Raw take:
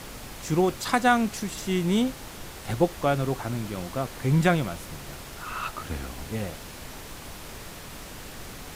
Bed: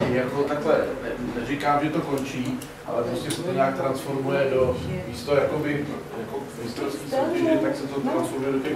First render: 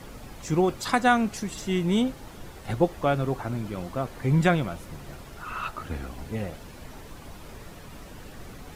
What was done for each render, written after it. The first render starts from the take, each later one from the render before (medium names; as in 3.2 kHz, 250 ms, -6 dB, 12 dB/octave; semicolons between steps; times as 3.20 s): noise reduction 9 dB, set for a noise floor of -42 dBFS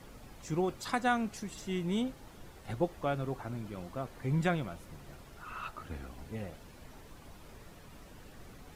trim -9 dB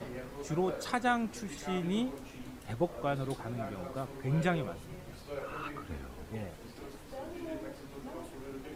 add bed -20 dB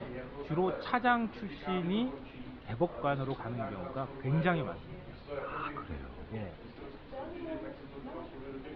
steep low-pass 4.1 kHz 48 dB/octave; dynamic bell 1.1 kHz, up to +4 dB, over -49 dBFS, Q 1.7